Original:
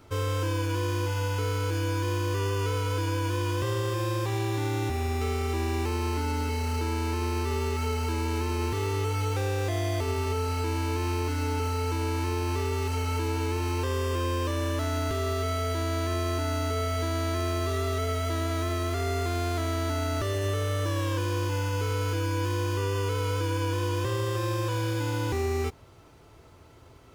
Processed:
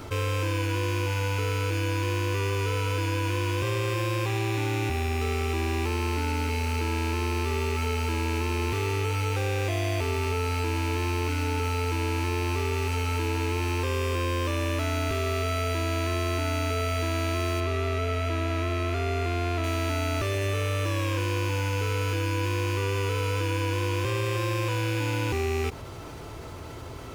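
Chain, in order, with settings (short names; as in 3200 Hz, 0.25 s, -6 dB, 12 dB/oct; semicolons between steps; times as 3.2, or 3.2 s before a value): rattling part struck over -31 dBFS, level -25 dBFS; 17.6–19.64 high shelf 5600 Hz -11.5 dB; fast leveller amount 50%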